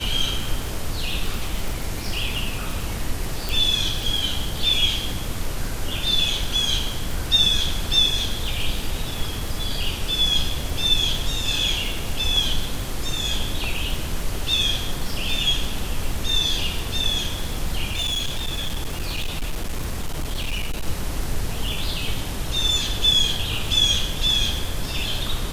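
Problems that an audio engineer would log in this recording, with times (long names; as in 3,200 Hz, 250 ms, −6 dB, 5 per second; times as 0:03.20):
surface crackle 46 per second −25 dBFS
0:03.49: click
0:17.89–0:20.88: clipping −21 dBFS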